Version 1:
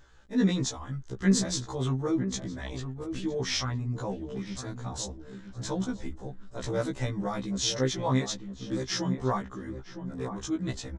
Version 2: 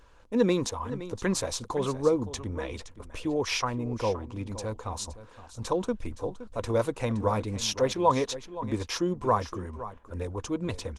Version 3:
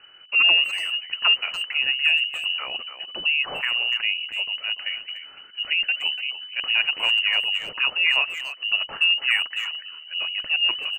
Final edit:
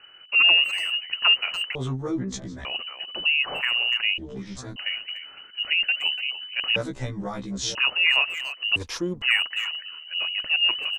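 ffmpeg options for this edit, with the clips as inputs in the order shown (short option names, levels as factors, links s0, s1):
-filter_complex "[0:a]asplit=3[s0][s1][s2];[2:a]asplit=5[s3][s4][s5][s6][s7];[s3]atrim=end=1.752[s8];[s0]atrim=start=1.748:end=2.652[s9];[s4]atrim=start=2.648:end=4.182[s10];[s1]atrim=start=4.178:end=4.762[s11];[s5]atrim=start=4.758:end=6.762[s12];[s2]atrim=start=6.758:end=7.752[s13];[s6]atrim=start=7.748:end=8.762[s14];[1:a]atrim=start=8.758:end=9.222[s15];[s7]atrim=start=9.218[s16];[s8][s9]acrossfade=d=0.004:c1=hsin:c2=hsin[s17];[s17][s10]acrossfade=d=0.004:c1=hsin:c2=hsin[s18];[s18][s11]acrossfade=d=0.004:c1=hsin:c2=hsin[s19];[s19][s12]acrossfade=d=0.004:c1=hsin:c2=hsin[s20];[s20][s13]acrossfade=d=0.004:c1=hsin:c2=hsin[s21];[s21][s14]acrossfade=d=0.004:c1=hsin:c2=hsin[s22];[s22][s15]acrossfade=d=0.004:c1=hsin:c2=hsin[s23];[s23][s16]acrossfade=d=0.004:c1=hsin:c2=hsin"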